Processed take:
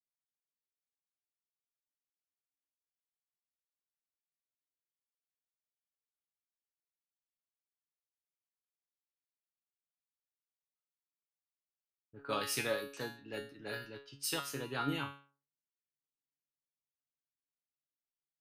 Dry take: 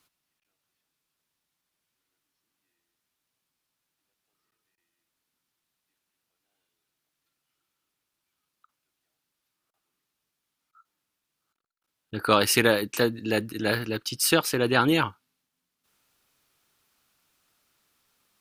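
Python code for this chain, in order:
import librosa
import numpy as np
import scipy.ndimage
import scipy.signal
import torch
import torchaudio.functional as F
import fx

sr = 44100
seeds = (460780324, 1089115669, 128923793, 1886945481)

y = fx.comb_fb(x, sr, f0_hz=140.0, decay_s=0.48, harmonics='all', damping=0.0, mix_pct=90)
y = fx.env_lowpass(y, sr, base_hz=340.0, full_db=-35.5)
y = fx.band_widen(y, sr, depth_pct=40)
y = y * 10.0 ** (-3.0 / 20.0)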